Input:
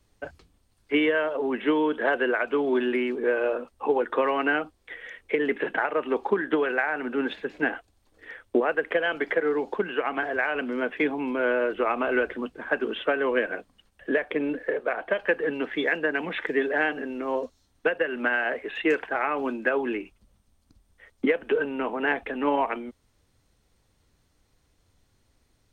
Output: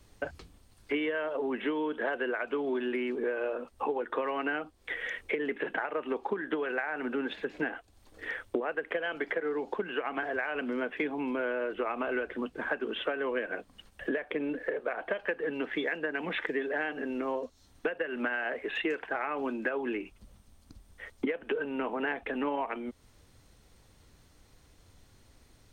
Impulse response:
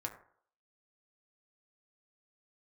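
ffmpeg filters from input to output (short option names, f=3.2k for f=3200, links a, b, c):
-af "acompressor=threshold=-39dB:ratio=4,volume=7dB"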